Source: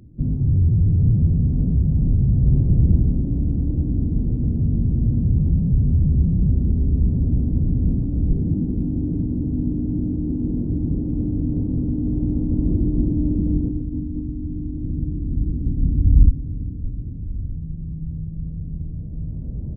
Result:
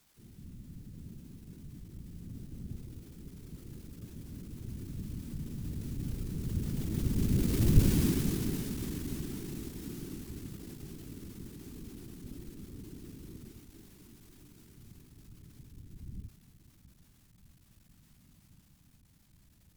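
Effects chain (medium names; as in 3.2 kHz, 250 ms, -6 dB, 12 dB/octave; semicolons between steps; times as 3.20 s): zero-crossing glitches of -13 dBFS; Doppler pass-by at 7.81 s, 23 m/s, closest 7.6 m; whisper effect; trim -4 dB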